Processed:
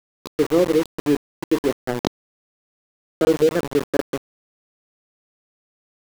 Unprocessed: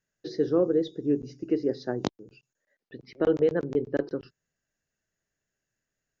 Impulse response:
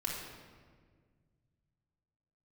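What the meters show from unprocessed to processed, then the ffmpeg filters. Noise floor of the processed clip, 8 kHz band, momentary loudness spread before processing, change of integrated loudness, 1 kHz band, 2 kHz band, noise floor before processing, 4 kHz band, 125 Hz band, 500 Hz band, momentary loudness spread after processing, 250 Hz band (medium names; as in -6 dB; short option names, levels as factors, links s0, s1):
under -85 dBFS, no reading, 12 LU, +6.0 dB, +9.5 dB, +9.5 dB, under -85 dBFS, +10.5 dB, +5.0 dB, +5.5 dB, 11 LU, +5.5 dB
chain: -af "aeval=exprs='val(0)*gte(abs(val(0)),0.0376)':c=same,volume=2"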